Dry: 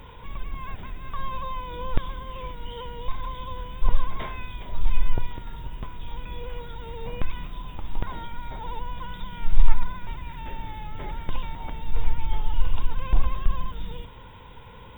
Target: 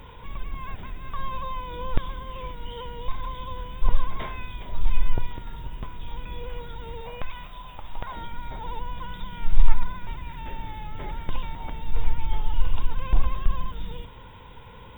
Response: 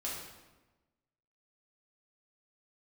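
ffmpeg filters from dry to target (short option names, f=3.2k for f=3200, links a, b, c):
-filter_complex "[0:a]asettb=1/sr,asplit=3[a][b][c];[a]atrim=end=7.014[d];[b]atrim=start=7.01:end=8.17,asetpts=PTS-STARTPTS,afade=t=in:d=0.004:c=qsin,afade=t=out:st=1.156:d=0.004:c=qsin,lowshelf=f=460:t=q:w=1.5:g=-7[e];[c]atrim=start=8.166[f];[d][e]acrossfade=d=0.004:c1=hsin:c2=qsin[g];[g][f]acrossfade=d=0.004:c1=qsin:c2=hsin"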